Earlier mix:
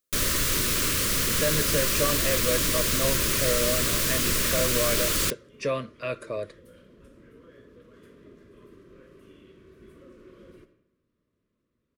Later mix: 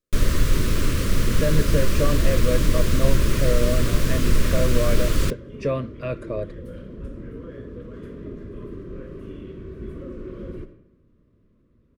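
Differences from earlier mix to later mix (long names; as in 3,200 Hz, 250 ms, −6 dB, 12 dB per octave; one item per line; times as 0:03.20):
second sound +9.5 dB
master: add spectral tilt −3 dB per octave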